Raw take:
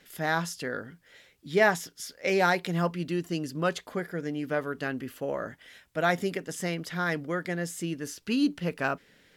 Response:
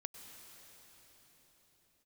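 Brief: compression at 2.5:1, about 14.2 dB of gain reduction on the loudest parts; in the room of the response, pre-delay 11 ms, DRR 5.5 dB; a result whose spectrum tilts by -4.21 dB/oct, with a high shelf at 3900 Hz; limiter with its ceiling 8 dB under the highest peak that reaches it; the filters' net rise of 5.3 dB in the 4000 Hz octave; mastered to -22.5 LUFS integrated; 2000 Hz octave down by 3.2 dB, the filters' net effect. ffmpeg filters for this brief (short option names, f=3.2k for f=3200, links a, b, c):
-filter_complex "[0:a]equalizer=f=2k:t=o:g=-6.5,highshelf=f=3.9k:g=6.5,equalizer=f=4k:t=o:g=4.5,acompressor=threshold=-41dB:ratio=2.5,alimiter=level_in=8dB:limit=-24dB:level=0:latency=1,volume=-8dB,asplit=2[a][b];[1:a]atrim=start_sample=2205,adelay=11[c];[b][c]afir=irnorm=-1:irlink=0,volume=-2dB[d];[a][d]amix=inputs=2:normalize=0,volume=19dB"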